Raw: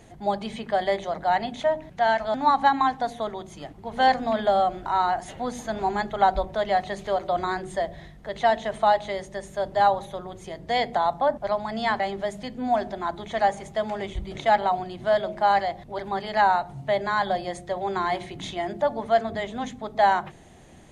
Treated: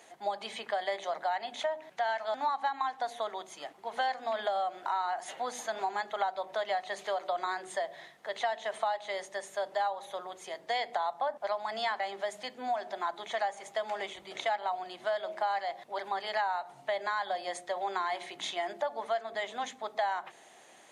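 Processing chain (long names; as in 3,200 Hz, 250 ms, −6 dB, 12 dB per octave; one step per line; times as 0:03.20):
high-pass filter 640 Hz 12 dB per octave
downward compressor 5 to 1, threshold −29 dBFS, peak gain reduction 13 dB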